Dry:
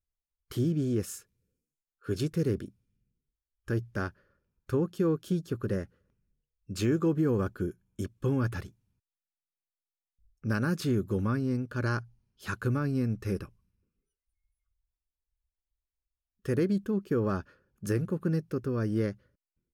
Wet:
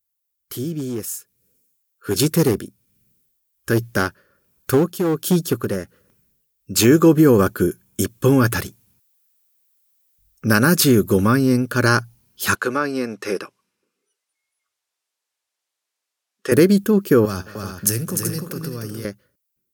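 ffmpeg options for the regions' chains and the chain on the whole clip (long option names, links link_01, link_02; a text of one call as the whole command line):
ffmpeg -i in.wav -filter_complex "[0:a]asettb=1/sr,asplit=3[link_01][link_02][link_03];[link_01]atrim=end=0.794[link_04];[link_02]atrim=start=0.79:end=6.85,asetpts=PTS-STARTPTS,afade=type=in:duration=0.004:curve=qsin,afade=type=out:start_time=6.056:duration=0.004:curve=qsin,aeval=exprs='clip(val(0),-1,0.0631)':channel_layout=same,tremolo=f=1.3:d=0.57[link_05];[link_03]atrim=start=6.846[link_06];[link_04][link_05]acrossfade=duration=0.004:curve1=hsin:curve2=qsin[link_07];[link_07][link_06]acrossfade=duration=0.004:curve1=qsin:curve2=hsin,asettb=1/sr,asplit=3[link_08][link_09][link_10];[link_08]atrim=end=12.554[link_11];[link_09]atrim=start=12.55:end=16.52,asetpts=PTS-STARTPTS,afade=type=in:duration=0.004:curve=qsin,afade=type=out:start_time=3.966:duration=0.004:curve=qsin,highpass=420,lowpass=7400,highshelf=frequency=4400:gain=-6.5[link_12];[link_10]atrim=start=16.516[link_13];[link_11][link_12]acrossfade=duration=0.004:curve1=hsin:curve2=qsin[link_14];[link_14][link_13]acrossfade=duration=0.004:curve1=qsin:curve2=hsin,asettb=1/sr,asplit=3[link_15][link_16][link_17];[link_15]atrim=end=17.254[link_18];[link_16]atrim=start=17.25:end=19.05,asetpts=PTS-STARTPTS,afade=type=in:duration=0.004:curve=qsin,afade=type=out:start_time=1.796:duration=0.004:curve=qsin,acrossover=split=120|3000[link_19][link_20][link_21];[link_20]acompressor=threshold=-39dB:ratio=6:attack=3.2:release=140:knee=2.83:detection=peak[link_22];[link_19][link_22][link_21]amix=inputs=3:normalize=0,aecho=1:1:64|215|301|381:0.141|0.133|0.596|0.398,atrim=end_sample=79380[link_23];[link_17]atrim=start=19.046[link_24];[link_18][link_23]acrossfade=duration=0.004:curve1=hsin:curve2=qsin[link_25];[link_25][link_24]acrossfade=duration=0.004:curve1=qsin:curve2=hsin,highpass=frequency=200:poles=1,aemphasis=mode=production:type=50fm,dynaudnorm=framelen=170:gausssize=17:maxgain=13dB,volume=3.5dB" out.wav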